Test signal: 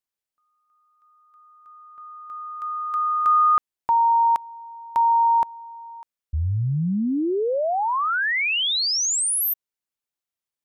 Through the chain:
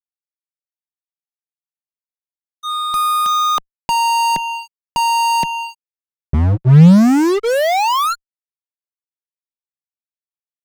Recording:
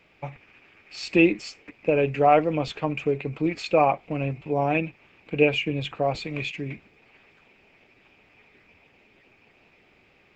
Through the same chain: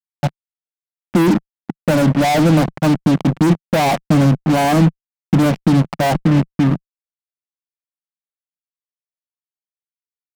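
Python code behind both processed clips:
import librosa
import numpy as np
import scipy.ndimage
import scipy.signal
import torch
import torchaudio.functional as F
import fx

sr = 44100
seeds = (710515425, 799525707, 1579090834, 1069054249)

p1 = fx.env_lowpass(x, sr, base_hz=440.0, full_db=-16.5)
p2 = np.clip(p1, -10.0 ** (-18.0 / 20.0), 10.0 ** (-18.0 / 20.0))
p3 = p1 + (p2 * 10.0 ** (-7.5 / 20.0))
p4 = scipy.signal.sosfilt(scipy.signal.butter(4, 1300.0, 'lowpass', fs=sr, output='sos'), p3)
p5 = fx.fixed_phaser(p4, sr, hz=430.0, stages=6)
p6 = fx.fuzz(p5, sr, gain_db=41.0, gate_db=-38.0)
p7 = fx.peak_eq(p6, sr, hz=160.0, db=12.0, octaves=1.1)
y = p7 * 10.0 ** (-1.5 / 20.0)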